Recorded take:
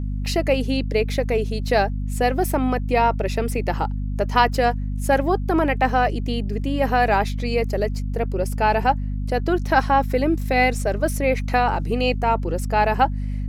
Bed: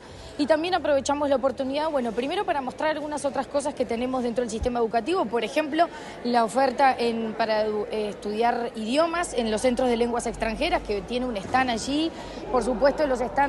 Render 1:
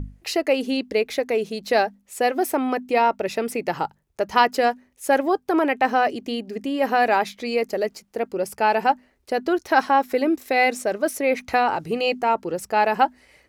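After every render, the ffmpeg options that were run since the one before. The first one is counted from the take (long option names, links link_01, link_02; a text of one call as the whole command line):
ffmpeg -i in.wav -af "bandreject=frequency=50:width_type=h:width=6,bandreject=frequency=100:width_type=h:width=6,bandreject=frequency=150:width_type=h:width=6,bandreject=frequency=200:width_type=h:width=6,bandreject=frequency=250:width_type=h:width=6" out.wav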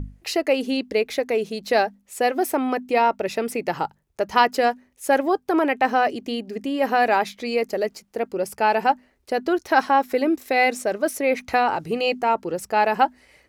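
ffmpeg -i in.wav -af anull out.wav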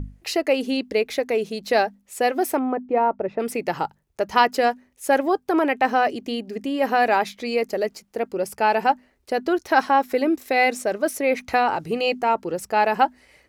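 ffmpeg -i in.wav -filter_complex "[0:a]asplit=3[link_01][link_02][link_03];[link_01]afade=type=out:start_time=2.58:duration=0.02[link_04];[link_02]lowpass=1100,afade=type=in:start_time=2.58:duration=0.02,afade=type=out:start_time=3.39:duration=0.02[link_05];[link_03]afade=type=in:start_time=3.39:duration=0.02[link_06];[link_04][link_05][link_06]amix=inputs=3:normalize=0" out.wav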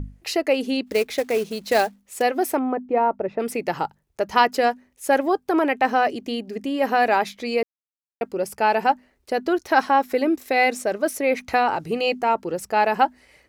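ffmpeg -i in.wav -filter_complex "[0:a]asplit=3[link_01][link_02][link_03];[link_01]afade=type=out:start_time=0.86:duration=0.02[link_04];[link_02]acrusher=bits=4:mode=log:mix=0:aa=0.000001,afade=type=in:start_time=0.86:duration=0.02,afade=type=out:start_time=2.21:duration=0.02[link_05];[link_03]afade=type=in:start_time=2.21:duration=0.02[link_06];[link_04][link_05][link_06]amix=inputs=3:normalize=0,asplit=3[link_07][link_08][link_09];[link_07]atrim=end=7.63,asetpts=PTS-STARTPTS,afade=type=out:start_time=7.626:duration=0.004:curve=hsin[link_10];[link_08]atrim=start=7.63:end=8.21,asetpts=PTS-STARTPTS,volume=0[link_11];[link_09]atrim=start=8.21,asetpts=PTS-STARTPTS,afade=type=in:duration=0.004:curve=hsin[link_12];[link_10][link_11][link_12]concat=n=3:v=0:a=1" out.wav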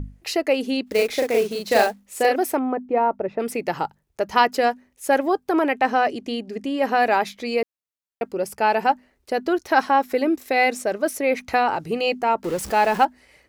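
ffmpeg -i in.wav -filter_complex "[0:a]asettb=1/sr,asplit=3[link_01][link_02][link_03];[link_01]atrim=end=0.944[link_04];[link_02]atrim=start=0.94:end=2.36,asetpts=PTS-STARTPTS,afade=type=in:duration=0.004:curve=qsin,afade=type=out:start_time=1.416:duration=0.004:curve=qsin,asplit=2[link_05][link_06];[link_06]adelay=39,volume=-2dB[link_07];[link_05][link_07]amix=inputs=2:normalize=0,atrim=end_sample=62622[link_08];[link_03]atrim=start=2.356[link_09];[link_04][link_08]acrossfade=duration=0.004:curve1=hsin:curve2=qsin[link_10];[link_10][link_09]acrossfade=duration=0.004:curve1=qsin:curve2=hsin,asettb=1/sr,asplit=3[link_11][link_12][link_13];[link_11]atrim=end=5.794[link_14];[link_12]atrim=start=5.79:end=6.97,asetpts=PTS-STARTPTS,afade=type=in:duration=0.004:curve=qsin,afade=type=out:start_time=1.176:duration=0.004:curve=qsin,lowpass=11000[link_15];[link_13]atrim=start=6.966[link_16];[link_14][link_15]acrossfade=duration=0.004:curve1=hsin:curve2=qsin[link_17];[link_17][link_16]acrossfade=duration=0.004:curve1=qsin:curve2=hsin,asettb=1/sr,asplit=3[link_18][link_19][link_20];[link_18]atrim=end=12.444[link_21];[link_19]atrim=start=12.44:end=13.05,asetpts=PTS-STARTPTS,afade=type=in:duration=0.004:curve=qsin,afade=type=out:start_time=0.606:duration=0.004:curve=qsin,aeval=exprs='val(0)+0.5*0.0316*sgn(val(0))':channel_layout=same[link_22];[link_20]atrim=start=13.046[link_23];[link_21][link_22]acrossfade=duration=0.004:curve1=hsin:curve2=qsin[link_24];[link_24][link_23]acrossfade=duration=0.004:curve1=qsin:curve2=hsin" out.wav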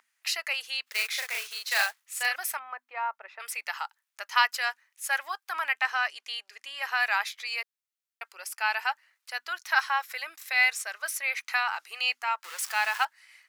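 ffmpeg -i in.wav -af "highpass=frequency=1200:width=0.5412,highpass=frequency=1200:width=1.3066" out.wav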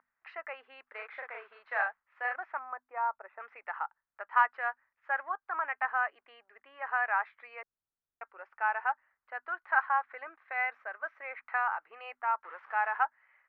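ffmpeg -i in.wav -af "lowpass=frequency=1600:width=0.5412,lowpass=frequency=1600:width=1.3066,aemphasis=mode=reproduction:type=bsi" out.wav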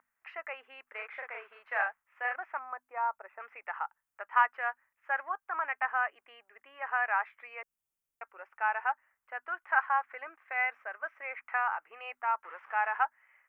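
ffmpeg -i in.wav -af "aexciter=amount=1.2:drive=3.6:freq=2200" out.wav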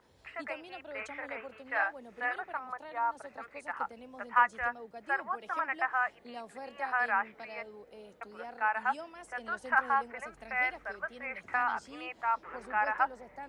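ffmpeg -i in.wav -i bed.wav -filter_complex "[1:a]volume=-23dB[link_01];[0:a][link_01]amix=inputs=2:normalize=0" out.wav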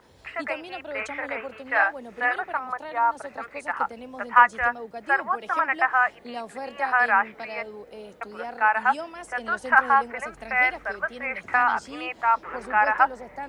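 ffmpeg -i in.wav -af "volume=9.5dB" out.wav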